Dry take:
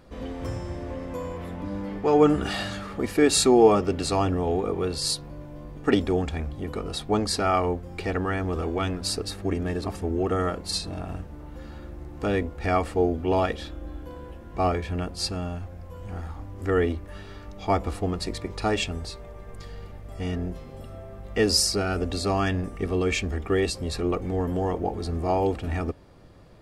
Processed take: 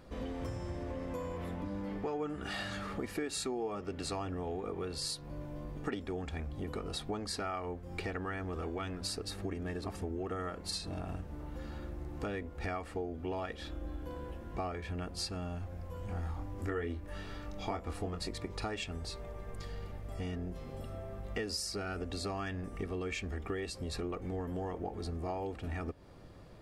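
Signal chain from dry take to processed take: dynamic bell 1.7 kHz, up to +4 dB, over -40 dBFS, Q 1.2; compression 6:1, threshold -33 dBFS, peak gain reduction 20 dB; 16.06–18.28 s: doubling 24 ms -6.5 dB; trim -2.5 dB

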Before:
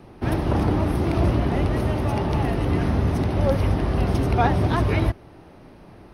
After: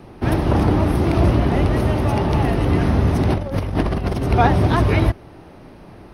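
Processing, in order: 3.27–4.31 s: compressor with a negative ratio -24 dBFS, ratio -0.5; trim +4.5 dB

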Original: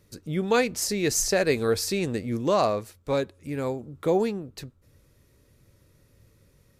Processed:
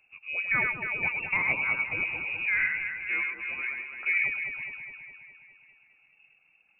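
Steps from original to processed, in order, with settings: reverb removal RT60 1.5 s; echo whose repeats swap between lows and highs 103 ms, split 1.7 kHz, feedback 78%, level -3 dB; frequency inversion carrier 2.7 kHz; trim -5 dB

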